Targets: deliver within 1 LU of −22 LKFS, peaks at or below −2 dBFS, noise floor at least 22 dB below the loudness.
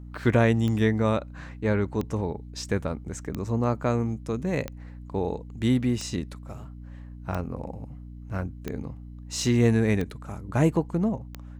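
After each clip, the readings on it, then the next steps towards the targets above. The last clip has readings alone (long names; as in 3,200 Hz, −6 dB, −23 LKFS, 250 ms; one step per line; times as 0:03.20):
number of clicks 9; mains hum 60 Hz; hum harmonics up to 300 Hz; level of the hum −40 dBFS; integrated loudness −27.0 LKFS; sample peak −9.5 dBFS; target loudness −22.0 LKFS
→ click removal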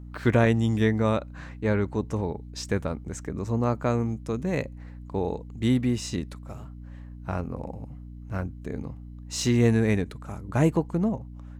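number of clicks 1; mains hum 60 Hz; hum harmonics up to 300 Hz; level of the hum −40 dBFS
→ hum removal 60 Hz, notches 5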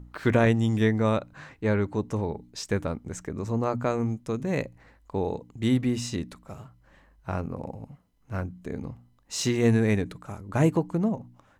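mains hum none found; integrated loudness −27.5 LKFS; sample peak −9.5 dBFS; target loudness −22.0 LKFS
→ level +5.5 dB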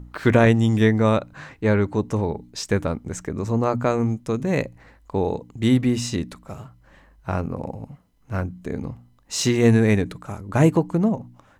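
integrated loudness −22.0 LKFS; sample peak −4.0 dBFS; background noise floor −56 dBFS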